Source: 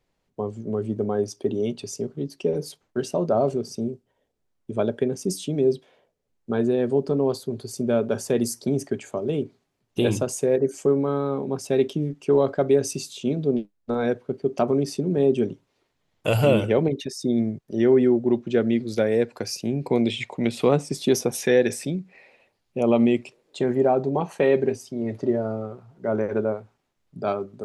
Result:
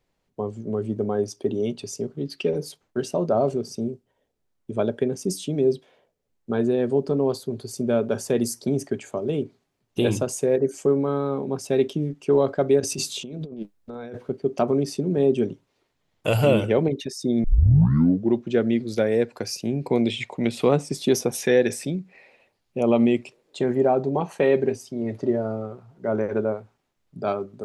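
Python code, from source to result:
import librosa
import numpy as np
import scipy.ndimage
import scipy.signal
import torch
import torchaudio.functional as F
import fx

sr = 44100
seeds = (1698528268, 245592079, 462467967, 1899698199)

y = fx.spec_box(x, sr, start_s=2.26, length_s=0.24, low_hz=1200.0, high_hz=5100.0, gain_db=9)
y = fx.over_compress(y, sr, threshold_db=-33.0, ratio=-1.0, at=(12.8, 14.3))
y = fx.edit(y, sr, fx.tape_start(start_s=17.44, length_s=0.89), tone=tone)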